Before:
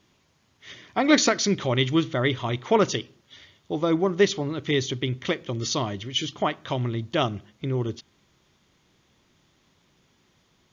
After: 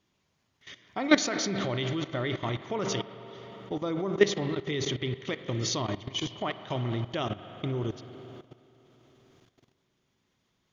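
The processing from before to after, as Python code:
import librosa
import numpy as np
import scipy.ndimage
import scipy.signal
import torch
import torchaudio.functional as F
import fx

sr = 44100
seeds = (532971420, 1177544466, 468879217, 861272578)

y = fx.rev_spring(x, sr, rt60_s=3.8, pass_ms=(41, 51), chirp_ms=25, drr_db=8.5)
y = fx.level_steps(y, sr, step_db=15)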